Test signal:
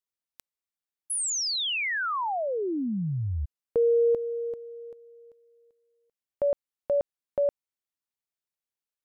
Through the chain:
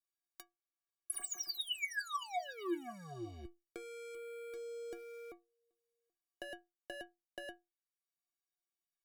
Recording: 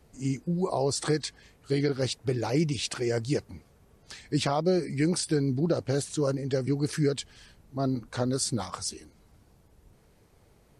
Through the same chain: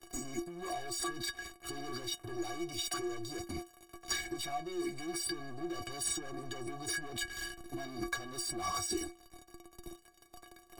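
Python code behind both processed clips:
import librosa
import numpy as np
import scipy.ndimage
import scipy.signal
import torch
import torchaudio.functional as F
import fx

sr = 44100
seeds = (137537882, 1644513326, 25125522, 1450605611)

y = fx.peak_eq(x, sr, hz=2700.0, db=-5.5, octaves=0.34)
y = fx.leveller(y, sr, passes=5)
y = fx.over_compress(y, sr, threshold_db=-26.0, ratio=-1.0)
y = fx.stiff_resonator(y, sr, f0_hz=340.0, decay_s=0.22, stiffness=0.03)
y = fx.band_squash(y, sr, depth_pct=40)
y = y * 10.0 ** (2.0 / 20.0)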